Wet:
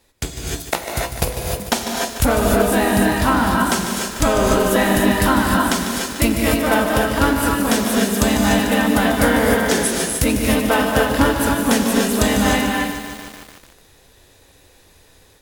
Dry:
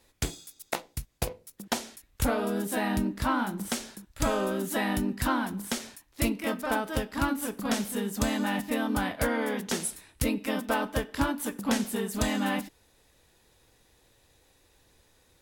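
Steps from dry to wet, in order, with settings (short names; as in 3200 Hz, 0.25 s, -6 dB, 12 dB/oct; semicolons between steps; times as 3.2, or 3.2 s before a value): non-linear reverb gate 0.33 s rising, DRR 0.5 dB; AGC gain up to 6 dB; lo-fi delay 0.148 s, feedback 80%, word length 6-bit, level -10 dB; gain +4 dB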